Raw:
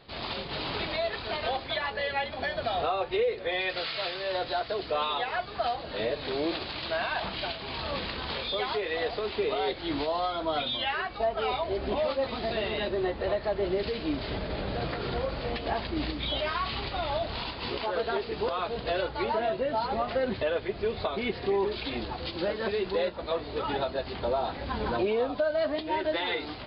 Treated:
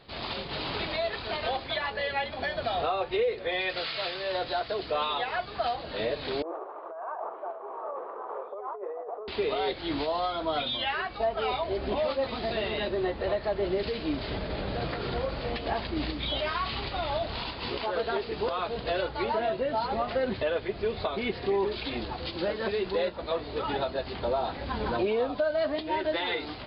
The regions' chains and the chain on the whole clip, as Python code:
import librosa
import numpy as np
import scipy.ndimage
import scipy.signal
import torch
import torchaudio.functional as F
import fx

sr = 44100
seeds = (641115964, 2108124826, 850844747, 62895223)

y = fx.chain(x, sr, fx.ellip_bandpass(low_hz=400.0, high_hz=1200.0, order=3, stop_db=80),
    fx.over_compress(threshold_db=-36.0, ratio=-1.0), at=(6.42, 9.28))